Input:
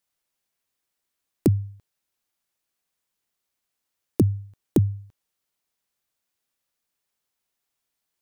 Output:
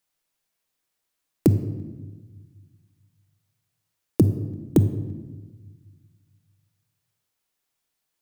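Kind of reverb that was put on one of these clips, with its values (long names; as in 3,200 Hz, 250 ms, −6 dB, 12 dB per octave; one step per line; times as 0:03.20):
rectangular room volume 980 cubic metres, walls mixed, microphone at 0.56 metres
level +1.5 dB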